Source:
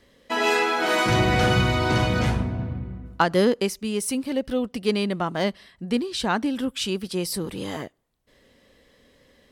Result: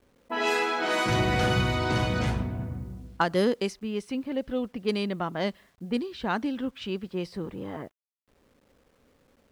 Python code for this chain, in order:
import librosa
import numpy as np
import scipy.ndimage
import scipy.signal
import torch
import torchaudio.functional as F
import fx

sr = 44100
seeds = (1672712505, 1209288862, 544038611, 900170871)

y = fx.env_lowpass(x, sr, base_hz=550.0, full_db=-17.0)
y = fx.quant_dither(y, sr, seeds[0], bits=10, dither='none')
y = F.gain(torch.from_numpy(y), -4.5).numpy()